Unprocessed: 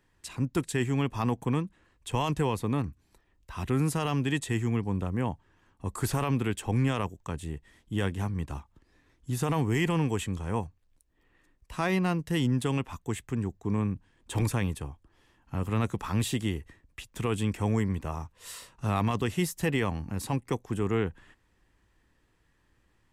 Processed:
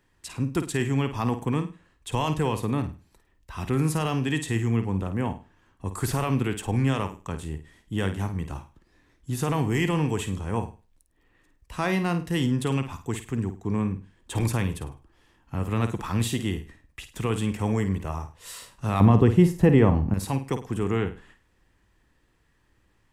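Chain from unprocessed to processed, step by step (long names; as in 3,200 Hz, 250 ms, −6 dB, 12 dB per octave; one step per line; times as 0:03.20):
0:19.00–0:20.14: tilt shelving filter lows +10 dB, about 1,500 Hz
on a send: flutter between parallel walls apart 8.9 metres, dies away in 0.32 s
on the sum: level +2 dB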